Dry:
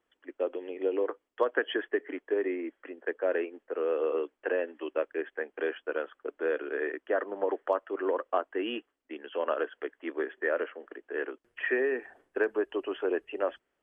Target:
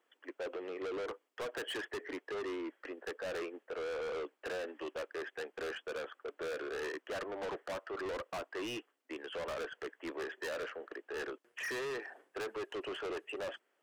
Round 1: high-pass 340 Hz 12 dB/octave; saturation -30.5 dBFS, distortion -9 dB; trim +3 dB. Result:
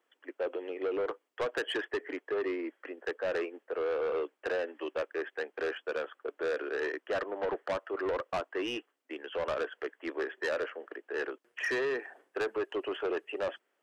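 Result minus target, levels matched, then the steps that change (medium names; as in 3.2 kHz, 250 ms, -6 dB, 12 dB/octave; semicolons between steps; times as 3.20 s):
saturation: distortion -5 dB
change: saturation -40 dBFS, distortion -3 dB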